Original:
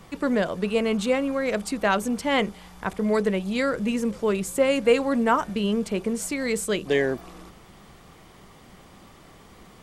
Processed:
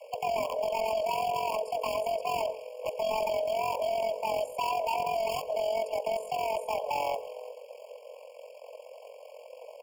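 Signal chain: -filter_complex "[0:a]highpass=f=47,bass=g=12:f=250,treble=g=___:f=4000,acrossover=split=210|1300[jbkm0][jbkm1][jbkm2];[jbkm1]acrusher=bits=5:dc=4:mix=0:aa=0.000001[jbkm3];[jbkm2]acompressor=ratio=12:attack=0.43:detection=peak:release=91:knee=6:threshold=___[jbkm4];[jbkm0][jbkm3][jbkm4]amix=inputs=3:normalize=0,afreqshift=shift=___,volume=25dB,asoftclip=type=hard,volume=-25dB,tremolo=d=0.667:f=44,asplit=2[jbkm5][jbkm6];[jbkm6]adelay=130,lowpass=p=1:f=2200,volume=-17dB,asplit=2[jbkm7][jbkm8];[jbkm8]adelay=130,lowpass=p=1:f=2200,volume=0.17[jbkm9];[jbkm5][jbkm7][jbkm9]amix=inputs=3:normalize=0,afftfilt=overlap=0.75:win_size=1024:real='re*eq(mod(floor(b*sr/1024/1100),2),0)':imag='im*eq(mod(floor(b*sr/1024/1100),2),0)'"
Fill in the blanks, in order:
-4, -42dB, 440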